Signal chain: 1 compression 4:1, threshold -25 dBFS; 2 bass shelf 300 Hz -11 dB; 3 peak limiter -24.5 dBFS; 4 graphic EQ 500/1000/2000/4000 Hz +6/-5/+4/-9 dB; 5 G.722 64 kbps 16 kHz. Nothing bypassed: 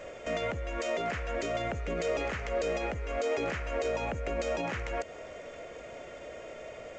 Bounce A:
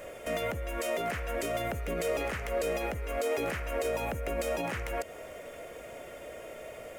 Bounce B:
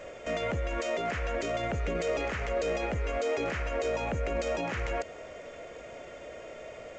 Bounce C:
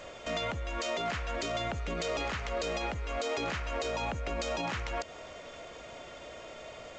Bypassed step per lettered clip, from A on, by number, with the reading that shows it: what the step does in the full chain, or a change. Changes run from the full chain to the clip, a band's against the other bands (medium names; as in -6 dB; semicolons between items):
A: 5, 8 kHz band +4.0 dB; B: 1, mean gain reduction 5.0 dB; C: 4, crest factor change -1.5 dB